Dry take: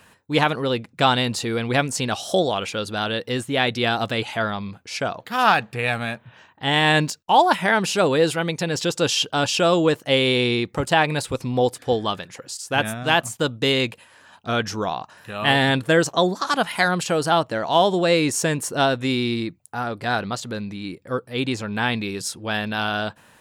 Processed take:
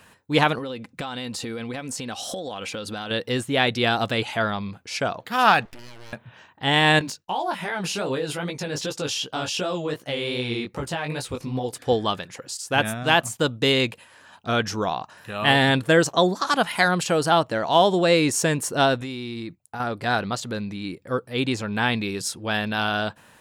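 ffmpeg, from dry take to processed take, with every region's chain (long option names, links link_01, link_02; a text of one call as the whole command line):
ffmpeg -i in.wav -filter_complex "[0:a]asettb=1/sr,asplit=3[link_01][link_02][link_03];[link_01]atrim=end=0.584[link_04];[link_02]atrim=start=0.58:end=3.11,asetpts=PTS-STARTPTS,afade=type=in:duration=0.004:curve=qsin,afade=type=out:start_time=2.526:duration=0.004:curve=qsin,aecho=1:1:3.9:0.33,atrim=end_sample=111573,acompressor=threshold=-27dB:ratio=20:attack=3.2:release=140:knee=1:detection=peak[link_05];[link_03]atrim=start=3.106[link_06];[link_04][link_05]acrossfade=duration=0.004:curve1=hsin:curve2=qsin[link_07];[link_07][link_06]acrossfade=duration=0.004:curve1=qsin:curve2=hsin,asettb=1/sr,asplit=3[link_08][link_09][link_10];[link_08]atrim=end=5.654[link_11];[link_09]atrim=start=5.65:end=6.13,asetpts=PTS-STARTPTS,afade=type=in:duration=0.004:curve=qsin,afade=type=out:start_time=0.476:duration=0.004:curve=qsin,acompressor=threshold=-36dB:ratio=16:attack=3.2:release=140:knee=1:detection=peak,aeval=exprs='abs(val(0))':channel_layout=same[link_12];[link_10]atrim=start=6.126[link_13];[link_11][link_12]acrossfade=duration=0.004:curve1=hsin:curve2=qsin[link_14];[link_14][link_13]acrossfade=duration=0.004:curve1=qsin:curve2=hsin,asettb=1/sr,asplit=3[link_15][link_16][link_17];[link_15]atrim=end=6.994[link_18];[link_16]atrim=start=6.99:end=11.73,asetpts=PTS-STARTPTS,afade=type=in:duration=0.004:curve=qsin,afade=type=out:start_time=4.736:duration=0.004:curve=qsin,bandreject=frequency=7700:width=14,acompressor=threshold=-20dB:ratio=6:attack=3.2:release=140:knee=1:detection=peak,flanger=delay=15:depth=6.2:speed=2.6[link_19];[link_17]atrim=start=11.726[link_20];[link_18][link_19]acrossfade=duration=0.004:curve1=hsin:curve2=qsin[link_21];[link_21][link_20]acrossfade=duration=0.004:curve1=qsin:curve2=hsin,asettb=1/sr,asplit=3[link_22][link_23][link_24];[link_22]atrim=end=19.014[link_25];[link_23]atrim=start=19.01:end=19.8,asetpts=PTS-STARTPTS,afade=type=in:duration=0.004:curve=qsin,afade=type=out:start_time=0.786:duration=0.004:curve=qsin,agate=range=-8dB:threshold=-45dB:ratio=16:release=100:detection=peak,acompressor=threshold=-28dB:ratio=10:attack=3.2:release=140:knee=1:detection=peak[link_26];[link_24]atrim=start=19.796[link_27];[link_25][link_26]acrossfade=duration=0.004:curve1=hsin:curve2=qsin[link_28];[link_28][link_27]acrossfade=duration=0.004:curve1=qsin:curve2=hsin" out.wav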